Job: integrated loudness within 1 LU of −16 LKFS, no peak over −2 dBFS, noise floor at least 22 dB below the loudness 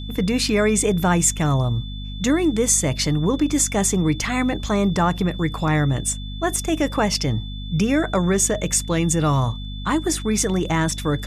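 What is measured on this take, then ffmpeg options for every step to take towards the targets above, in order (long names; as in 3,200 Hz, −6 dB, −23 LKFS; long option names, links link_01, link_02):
mains hum 50 Hz; hum harmonics up to 250 Hz; level of the hum −28 dBFS; interfering tone 3,500 Hz; level of the tone −38 dBFS; integrated loudness −20.5 LKFS; sample peak −5.0 dBFS; target loudness −16.0 LKFS
→ -af "bandreject=frequency=50:width_type=h:width=4,bandreject=frequency=100:width_type=h:width=4,bandreject=frequency=150:width_type=h:width=4,bandreject=frequency=200:width_type=h:width=4,bandreject=frequency=250:width_type=h:width=4"
-af "bandreject=frequency=3500:width=30"
-af "volume=4.5dB,alimiter=limit=-2dB:level=0:latency=1"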